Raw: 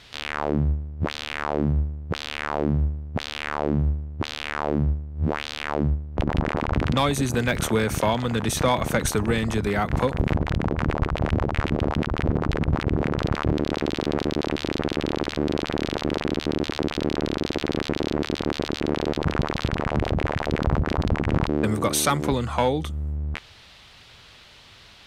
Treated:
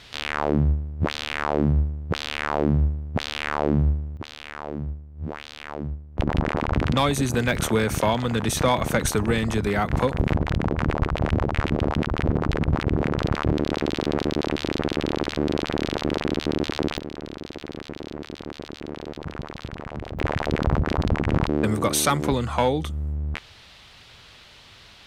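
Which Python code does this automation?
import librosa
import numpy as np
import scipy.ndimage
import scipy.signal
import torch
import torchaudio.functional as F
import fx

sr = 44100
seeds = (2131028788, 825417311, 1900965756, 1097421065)

y = fx.gain(x, sr, db=fx.steps((0.0, 2.0), (4.17, -8.0), (6.19, 0.5), (16.98, -10.0), (20.19, 0.5)))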